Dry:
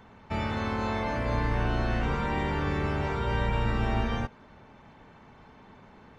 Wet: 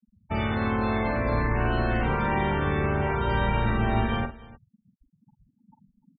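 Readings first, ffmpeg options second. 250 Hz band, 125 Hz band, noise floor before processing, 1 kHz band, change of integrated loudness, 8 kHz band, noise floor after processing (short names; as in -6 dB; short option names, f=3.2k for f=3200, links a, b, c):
+4.0 dB, +3.0 dB, -54 dBFS, +4.0 dB, +3.5 dB, n/a, -73 dBFS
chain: -af "afftfilt=real='re*gte(hypot(re,im),0.0178)':imag='im*gte(hypot(re,im),0.0178)':win_size=1024:overlap=0.75,aecho=1:1:46|300:0.376|0.106,volume=3dB"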